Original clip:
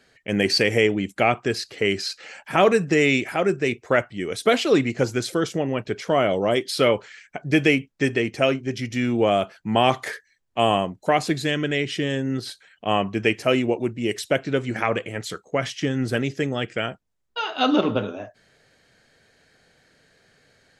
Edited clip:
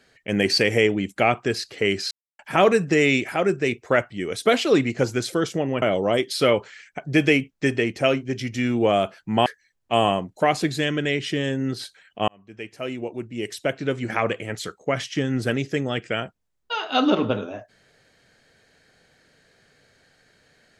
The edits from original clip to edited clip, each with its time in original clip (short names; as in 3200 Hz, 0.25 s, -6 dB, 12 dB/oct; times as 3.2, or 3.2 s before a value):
2.11–2.39 mute
5.82–6.2 cut
9.84–10.12 cut
12.94–14.9 fade in